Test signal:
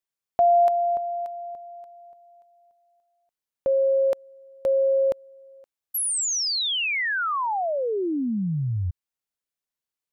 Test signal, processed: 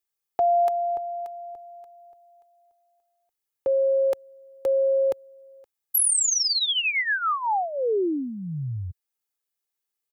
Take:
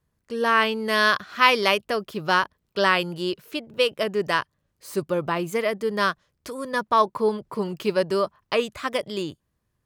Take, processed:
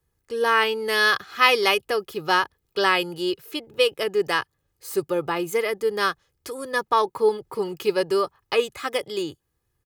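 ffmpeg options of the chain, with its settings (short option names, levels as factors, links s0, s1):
-filter_complex "[0:a]highshelf=f=9500:g=8,aecho=1:1:2.4:0.59,acrossover=split=100[s0][s1];[s0]acompressor=threshold=0.00112:ratio=6:release=653[s2];[s2][s1]amix=inputs=2:normalize=0,volume=0.891"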